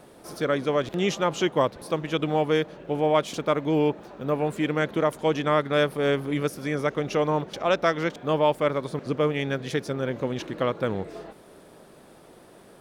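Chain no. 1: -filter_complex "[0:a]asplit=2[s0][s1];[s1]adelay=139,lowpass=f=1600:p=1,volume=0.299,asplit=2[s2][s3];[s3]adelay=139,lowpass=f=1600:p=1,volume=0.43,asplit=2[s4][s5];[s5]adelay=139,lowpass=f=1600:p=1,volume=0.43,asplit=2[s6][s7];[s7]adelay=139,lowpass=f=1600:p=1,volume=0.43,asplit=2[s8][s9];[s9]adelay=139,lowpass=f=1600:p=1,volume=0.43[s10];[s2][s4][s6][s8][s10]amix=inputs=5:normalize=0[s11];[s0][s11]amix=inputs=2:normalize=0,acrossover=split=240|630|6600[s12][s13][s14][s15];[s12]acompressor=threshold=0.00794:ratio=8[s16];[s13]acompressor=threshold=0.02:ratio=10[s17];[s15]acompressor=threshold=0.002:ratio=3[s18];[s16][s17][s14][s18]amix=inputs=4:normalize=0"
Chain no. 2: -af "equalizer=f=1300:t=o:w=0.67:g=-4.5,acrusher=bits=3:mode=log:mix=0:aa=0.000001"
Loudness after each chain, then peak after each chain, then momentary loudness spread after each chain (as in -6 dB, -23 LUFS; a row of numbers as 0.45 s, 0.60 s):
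-29.5 LUFS, -26.0 LUFS; -11.0 dBFS, -11.5 dBFS; 8 LU, 7 LU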